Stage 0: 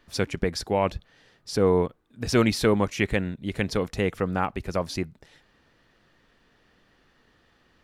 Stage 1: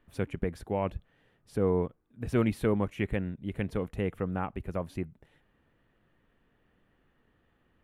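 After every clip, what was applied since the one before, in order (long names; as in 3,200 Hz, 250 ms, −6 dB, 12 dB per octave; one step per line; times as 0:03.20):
drawn EQ curve 130 Hz 0 dB, 3,000 Hz −8 dB, 5,100 Hz −23 dB, 10,000 Hz −8 dB
level −3.5 dB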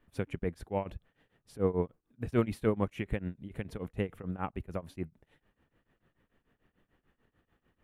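shaped tremolo triangle 6.8 Hz, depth 95%
level +1 dB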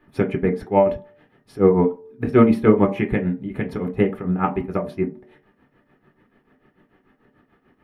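convolution reverb RT60 0.45 s, pre-delay 3 ms, DRR 1.5 dB
level +3 dB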